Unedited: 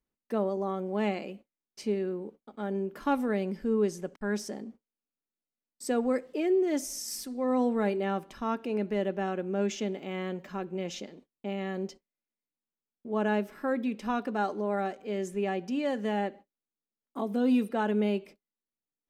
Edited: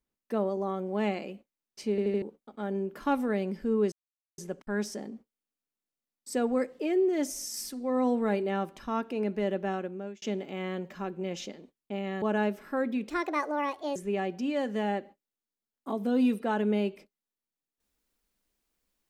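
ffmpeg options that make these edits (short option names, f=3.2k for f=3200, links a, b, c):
-filter_complex "[0:a]asplit=10[a][b][c][d][e][f][g][h][i][j];[a]atrim=end=1.982[k];[b]atrim=start=1.898:end=1.982[l];[c]atrim=start=1.898:end=1.982[m];[d]atrim=start=1.898:end=1.982[n];[e]atrim=start=2.218:end=3.92,asetpts=PTS-STARTPTS,afade=t=out:st=1.698:d=0.004:c=hsin,apad=pad_dur=0.46[o];[f]atrim=start=3.92:end=9.76,asetpts=PTS-STARTPTS,afade=t=in:d=0.004:c=hsin,afade=t=out:st=5.34:d=0.5[p];[g]atrim=start=9.76:end=11.762,asetpts=PTS-STARTPTS,afade=t=in:d=0.004:c=hsin[q];[h]atrim=start=13.128:end=14.004[r];[i]atrim=start=14:end=15.25,asetpts=PTS-STARTPTS,asetrate=63504,aresample=44100,atrim=end_sample=38281,asetpts=PTS-STARTPTS[s];[j]atrim=start=15.246[t];[k][l]acrossfade=d=0.004:c1=hsin:c2=hsin[u];[u][m]acrossfade=d=0.004:c1=hsin:c2=hsin[v];[v][n]acrossfade=d=0.004:c1=hsin:c2=hsin[w];[o][p][q]concat=n=3:v=0:a=1[x];[w][x]acrossfade=d=0.004:c1=hsin:c2=hsin[y];[y][r]acrossfade=d=0.004:c1=hsin:c2=hsin[z];[z][s]acrossfade=d=0.004:c1=hsin:c2=hsin[aa];[aa][t]acrossfade=d=0.004:c1=hsin:c2=hsin"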